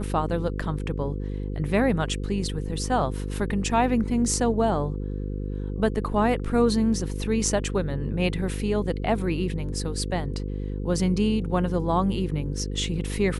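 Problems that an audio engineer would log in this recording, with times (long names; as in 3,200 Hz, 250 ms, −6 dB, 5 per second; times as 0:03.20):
mains buzz 50 Hz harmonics 10 −30 dBFS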